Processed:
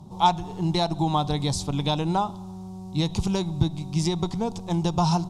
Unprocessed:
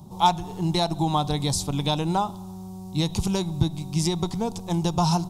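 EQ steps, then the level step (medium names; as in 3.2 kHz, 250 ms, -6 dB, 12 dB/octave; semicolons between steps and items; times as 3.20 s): distance through air 50 m; 0.0 dB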